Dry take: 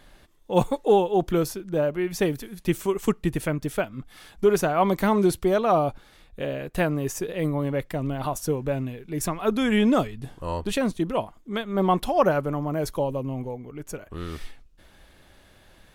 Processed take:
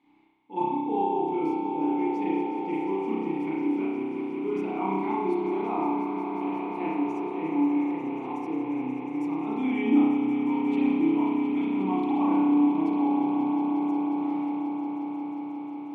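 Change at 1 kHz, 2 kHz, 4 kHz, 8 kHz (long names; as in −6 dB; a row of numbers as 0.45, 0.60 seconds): −1.5 dB, −7.0 dB, below −10 dB, below −25 dB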